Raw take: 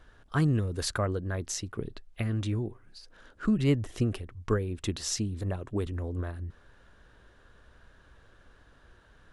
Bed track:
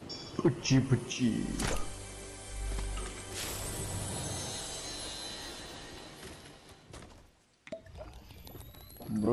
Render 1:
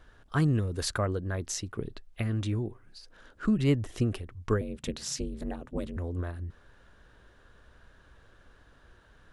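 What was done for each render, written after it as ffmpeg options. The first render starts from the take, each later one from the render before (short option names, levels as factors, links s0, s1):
-filter_complex "[0:a]asettb=1/sr,asplit=3[s0][s1][s2];[s0]atrim=end=4.614[s3];[s1]atrim=start=4.61:end=5.97,asetpts=PTS-STARTPTS,afade=t=in:d=0.004:c=qsin,afade=t=out:st=1.356:d=0.004:c=qsin,aeval=exprs='val(0)*sin(2*PI*140*n/s)':c=same[s4];[s2]atrim=start=5.966[s5];[s3][s4]acrossfade=d=0.004:c1=hsin:c2=qsin[s6];[s6][s5]acrossfade=d=0.004:c1=qsin:c2=hsin"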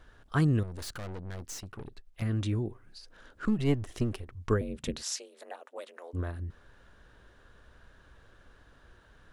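-filter_complex "[0:a]asettb=1/sr,asplit=3[s0][s1][s2];[s0]atrim=end=0.634[s3];[s1]atrim=start=0.63:end=2.22,asetpts=PTS-STARTPTS,afade=t=in:d=0.004:c=qsin,afade=t=out:st=1.586:d=0.004:c=qsin,aeval=exprs='(tanh(79.4*val(0)+0.7)-tanh(0.7))/79.4':c=same[s4];[s2]atrim=start=2.216[s5];[s3][s4]acrossfade=d=0.004:c1=hsin:c2=qsin[s6];[s6][s5]acrossfade=d=0.004:c1=qsin:c2=hsin,asettb=1/sr,asplit=3[s7][s8][s9];[s7]atrim=end=3.454[s10];[s8]atrim=start=3.45:end=4.33,asetpts=PTS-STARTPTS,afade=t=in:d=0.004:c=qsin,afade=t=out:st=0.876:d=0.004:c=qsin,aeval=exprs='if(lt(val(0),0),0.447*val(0),val(0))':c=same[s11];[s9]atrim=start=4.326[s12];[s10][s11]acrossfade=d=0.004:c1=hsin:c2=qsin[s13];[s13][s12]acrossfade=d=0.004:c1=qsin:c2=hsin,asplit=3[s14][s15][s16];[s14]afade=t=out:st=5.01:d=0.02[s17];[s15]highpass=f=540:w=0.5412,highpass=f=540:w=1.3066,afade=t=in:st=5.01:d=0.02,afade=t=out:st=6.13:d=0.02[s18];[s16]afade=t=in:st=6.13:d=0.02[s19];[s17][s18][s19]amix=inputs=3:normalize=0"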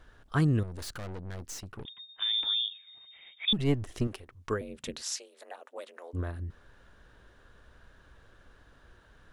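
-filter_complex "[0:a]asettb=1/sr,asplit=3[s0][s1][s2];[s0]atrim=end=1.854[s3];[s1]atrim=start=1.85:end=3.53,asetpts=PTS-STARTPTS,afade=t=in:d=0.004:c=qsin,afade=t=out:st=1.676:d=0.004:c=qsin,lowpass=f=3100:t=q:w=0.5098,lowpass=f=3100:t=q:w=0.6013,lowpass=f=3100:t=q:w=0.9,lowpass=f=3100:t=q:w=2.563,afreqshift=-3700[s4];[s2]atrim=start=3.526[s5];[s3][s4]acrossfade=d=0.004:c1=hsin:c2=qsin[s6];[s6][s5]acrossfade=d=0.004:c1=qsin:c2=hsin,asettb=1/sr,asplit=3[s7][s8][s9];[s7]atrim=end=4.074[s10];[s8]atrim=start=4.07:end=5.58,asetpts=PTS-STARTPTS,afade=t=in:d=0.004:c=qsin,afade=t=out:st=1.506:d=0.004:c=qsin,lowshelf=f=270:g=-11[s11];[s9]atrim=start=5.576[s12];[s10][s11]acrossfade=d=0.004:c1=hsin:c2=qsin[s13];[s13][s12]acrossfade=d=0.004:c1=qsin:c2=hsin"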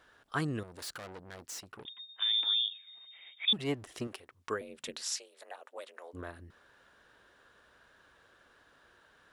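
-af "highpass=f=530:p=1,bandreject=f=6300:w=25"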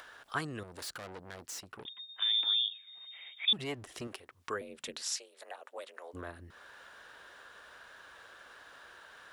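-filter_complex "[0:a]acrossover=split=510[s0][s1];[s0]alimiter=level_in=4.22:limit=0.0631:level=0:latency=1,volume=0.237[s2];[s1]acompressor=mode=upward:threshold=0.00708:ratio=2.5[s3];[s2][s3]amix=inputs=2:normalize=0"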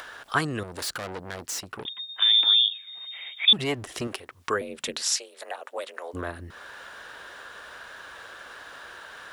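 -af "volume=3.35"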